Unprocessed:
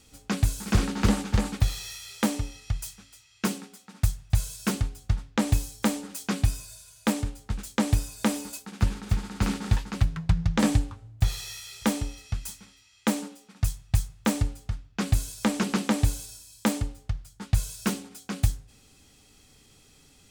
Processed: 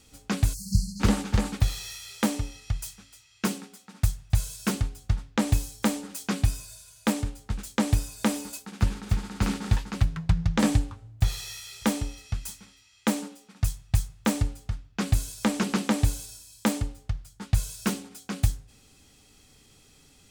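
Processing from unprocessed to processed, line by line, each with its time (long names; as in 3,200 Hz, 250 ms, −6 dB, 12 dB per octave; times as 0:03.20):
0:00.54–0:01.00: time-frequency box erased 210–4,100 Hz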